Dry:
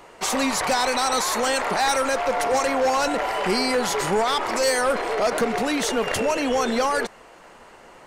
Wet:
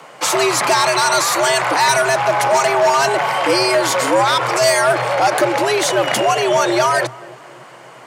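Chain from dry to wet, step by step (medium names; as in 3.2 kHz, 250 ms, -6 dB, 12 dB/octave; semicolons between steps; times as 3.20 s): frequency shift +120 Hz; filtered feedback delay 267 ms, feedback 60%, low-pass 840 Hz, level -18.5 dB; trim +7 dB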